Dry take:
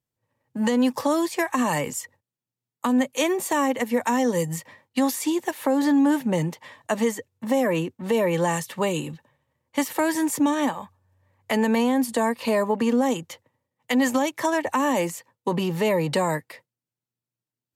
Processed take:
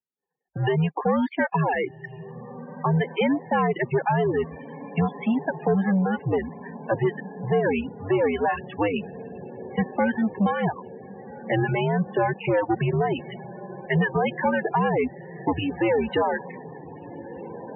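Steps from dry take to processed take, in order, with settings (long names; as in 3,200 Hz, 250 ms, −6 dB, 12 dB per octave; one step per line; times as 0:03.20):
reverb reduction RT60 0.7 s
single-sideband voice off tune −90 Hz 240–3,300 Hz
leveller curve on the samples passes 2
reverb reduction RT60 0.78 s
on a send: feedback delay with all-pass diffusion 1,558 ms, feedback 60%, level −15 dB
on the sum: spectral peaks only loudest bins 32
level −3 dB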